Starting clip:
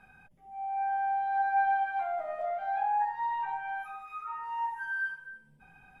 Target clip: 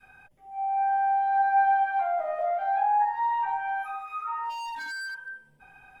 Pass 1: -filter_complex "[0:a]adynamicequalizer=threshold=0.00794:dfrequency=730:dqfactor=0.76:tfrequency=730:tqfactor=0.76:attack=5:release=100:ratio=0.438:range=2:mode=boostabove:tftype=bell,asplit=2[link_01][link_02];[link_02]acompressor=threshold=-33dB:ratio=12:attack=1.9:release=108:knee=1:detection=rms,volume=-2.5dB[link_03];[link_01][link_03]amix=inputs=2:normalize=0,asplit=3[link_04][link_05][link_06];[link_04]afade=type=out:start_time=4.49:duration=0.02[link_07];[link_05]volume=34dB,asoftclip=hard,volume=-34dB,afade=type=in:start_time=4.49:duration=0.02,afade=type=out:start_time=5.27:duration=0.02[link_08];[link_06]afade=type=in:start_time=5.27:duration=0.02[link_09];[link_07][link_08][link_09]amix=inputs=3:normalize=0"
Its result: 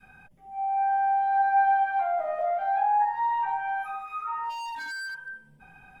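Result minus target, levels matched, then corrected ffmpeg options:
250 Hz band +3.5 dB
-filter_complex "[0:a]adynamicequalizer=threshold=0.00794:dfrequency=730:dqfactor=0.76:tfrequency=730:tqfactor=0.76:attack=5:release=100:ratio=0.438:range=2:mode=boostabove:tftype=bell,asplit=2[link_01][link_02];[link_02]acompressor=threshold=-33dB:ratio=12:attack=1.9:release=108:knee=1:detection=rms,highpass=frequency=180:width=0.5412,highpass=frequency=180:width=1.3066,volume=-2.5dB[link_03];[link_01][link_03]amix=inputs=2:normalize=0,asplit=3[link_04][link_05][link_06];[link_04]afade=type=out:start_time=4.49:duration=0.02[link_07];[link_05]volume=34dB,asoftclip=hard,volume=-34dB,afade=type=in:start_time=4.49:duration=0.02,afade=type=out:start_time=5.27:duration=0.02[link_08];[link_06]afade=type=in:start_time=5.27:duration=0.02[link_09];[link_07][link_08][link_09]amix=inputs=3:normalize=0"

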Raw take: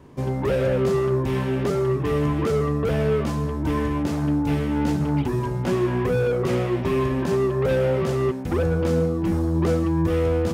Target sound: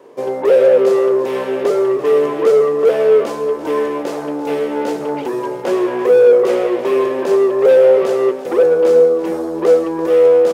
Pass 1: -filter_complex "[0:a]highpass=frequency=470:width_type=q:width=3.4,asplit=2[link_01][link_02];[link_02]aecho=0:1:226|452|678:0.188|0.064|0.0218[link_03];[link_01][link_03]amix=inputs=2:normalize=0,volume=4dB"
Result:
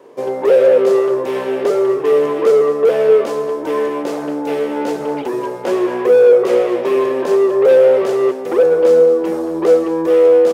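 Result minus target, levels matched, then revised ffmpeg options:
echo 114 ms early
-filter_complex "[0:a]highpass=frequency=470:width_type=q:width=3.4,asplit=2[link_01][link_02];[link_02]aecho=0:1:340|680|1020:0.188|0.064|0.0218[link_03];[link_01][link_03]amix=inputs=2:normalize=0,volume=4dB"

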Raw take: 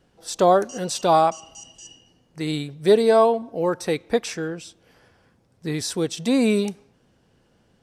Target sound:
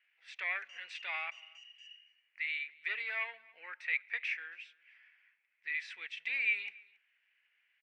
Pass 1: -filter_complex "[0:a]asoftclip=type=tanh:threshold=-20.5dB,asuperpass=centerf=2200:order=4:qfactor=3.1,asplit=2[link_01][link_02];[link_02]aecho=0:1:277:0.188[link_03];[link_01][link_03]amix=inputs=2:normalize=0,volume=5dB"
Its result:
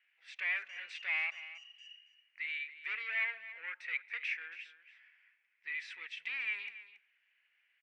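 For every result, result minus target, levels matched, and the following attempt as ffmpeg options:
soft clipping: distortion +12 dB; echo-to-direct +10.5 dB
-filter_complex "[0:a]asoftclip=type=tanh:threshold=-9.5dB,asuperpass=centerf=2200:order=4:qfactor=3.1,asplit=2[link_01][link_02];[link_02]aecho=0:1:277:0.188[link_03];[link_01][link_03]amix=inputs=2:normalize=0,volume=5dB"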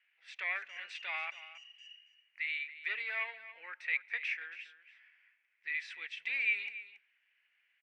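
echo-to-direct +10.5 dB
-filter_complex "[0:a]asoftclip=type=tanh:threshold=-9.5dB,asuperpass=centerf=2200:order=4:qfactor=3.1,asplit=2[link_01][link_02];[link_02]aecho=0:1:277:0.0562[link_03];[link_01][link_03]amix=inputs=2:normalize=0,volume=5dB"

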